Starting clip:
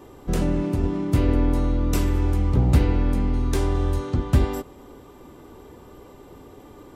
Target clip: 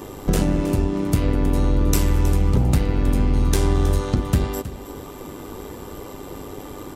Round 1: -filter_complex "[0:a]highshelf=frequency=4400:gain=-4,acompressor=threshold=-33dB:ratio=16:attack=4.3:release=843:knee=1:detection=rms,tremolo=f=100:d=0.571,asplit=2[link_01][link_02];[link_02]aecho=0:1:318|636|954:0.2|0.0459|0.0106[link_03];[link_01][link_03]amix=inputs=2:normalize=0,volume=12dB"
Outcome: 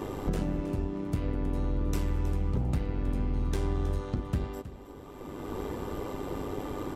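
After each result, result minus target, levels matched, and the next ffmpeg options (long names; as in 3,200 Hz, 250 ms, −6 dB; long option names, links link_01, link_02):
downward compressor: peak gain reduction +11 dB; 8,000 Hz band −6.5 dB
-filter_complex "[0:a]highshelf=frequency=4400:gain=-4,acompressor=threshold=-21dB:ratio=16:attack=4.3:release=843:knee=1:detection=rms,tremolo=f=100:d=0.571,asplit=2[link_01][link_02];[link_02]aecho=0:1:318|636|954:0.2|0.0459|0.0106[link_03];[link_01][link_03]amix=inputs=2:normalize=0,volume=12dB"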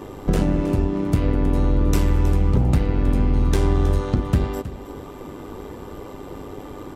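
8,000 Hz band −8.0 dB
-filter_complex "[0:a]highshelf=frequency=4400:gain=7.5,acompressor=threshold=-21dB:ratio=16:attack=4.3:release=843:knee=1:detection=rms,tremolo=f=100:d=0.571,asplit=2[link_01][link_02];[link_02]aecho=0:1:318|636|954:0.2|0.0459|0.0106[link_03];[link_01][link_03]amix=inputs=2:normalize=0,volume=12dB"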